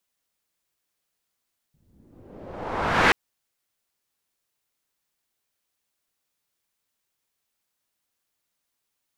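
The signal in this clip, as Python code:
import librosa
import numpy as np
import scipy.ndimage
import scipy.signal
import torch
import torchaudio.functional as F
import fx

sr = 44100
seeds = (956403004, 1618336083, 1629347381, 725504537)

y = fx.riser_noise(sr, seeds[0], length_s=1.38, colour='white', kind='lowpass', start_hz=130.0, end_hz=2000.0, q=1.3, swell_db=39.0, law='exponential')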